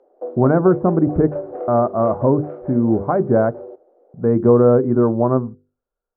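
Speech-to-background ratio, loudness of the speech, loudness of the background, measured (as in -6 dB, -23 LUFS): 14.0 dB, -17.5 LUFS, -31.5 LUFS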